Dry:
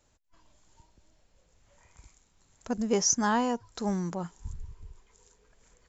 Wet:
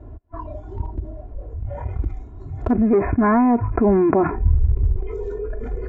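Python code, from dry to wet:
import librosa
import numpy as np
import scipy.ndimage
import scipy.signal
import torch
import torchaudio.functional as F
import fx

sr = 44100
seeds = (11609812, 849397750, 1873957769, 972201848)

y = scipy.signal.sosfilt(scipy.signal.butter(2, 72.0, 'highpass', fs=sr, output='sos'), x)
y = fx.noise_reduce_blind(y, sr, reduce_db=14)
y = fx.env_lowpass(y, sr, base_hz=920.0, full_db=-24.0)
y = fx.tilt_eq(y, sr, slope=-4.0)
y = y + 0.96 * np.pad(y, (int(2.9 * sr / 1000.0), 0))[:len(y)]
y = fx.leveller(y, sr, passes=1)
y = fx.rider(y, sr, range_db=4, speed_s=0.5)
y = fx.brickwall_lowpass(y, sr, high_hz=2600.0, at=(2.7, 4.72), fade=0.02)
y = fx.env_flatten(y, sr, amount_pct=70)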